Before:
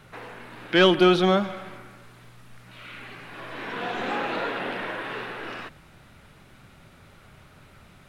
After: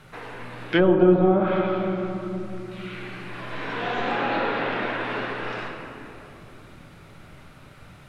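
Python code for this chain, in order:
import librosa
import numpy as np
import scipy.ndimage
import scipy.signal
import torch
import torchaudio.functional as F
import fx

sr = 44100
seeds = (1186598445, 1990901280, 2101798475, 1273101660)

y = fx.room_shoebox(x, sr, seeds[0], volume_m3=170.0, walls='hard', distance_m=0.4)
y = fx.env_lowpass_down(y, sr, base_hz=680.0, full_db=-13.5)
y = F.gain(torch.from_numpy(y), 1.0).numpy()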